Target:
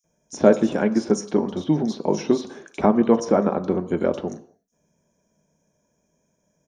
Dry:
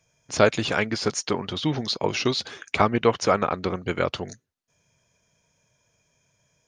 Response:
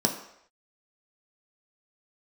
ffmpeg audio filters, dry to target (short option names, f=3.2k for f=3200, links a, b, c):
-filter_complex "[0:a]equalizer=f=2.9k:w=0.45:g=-13,acrossover=split=4100[a][b];[a]adelay=40[c];[c][b]amix=inputs=2:normalize=0,asplit=2[d][e];[1:a]atrim=start_sample=2205,afade=t=out:st=0.34:d=0.01,atrim=end_sample=15435[f];[e][f]afir=irnorm=-1:irlink=0,volume=-13.5dB[g];[d][g]amix=inputs=2:normalize=0"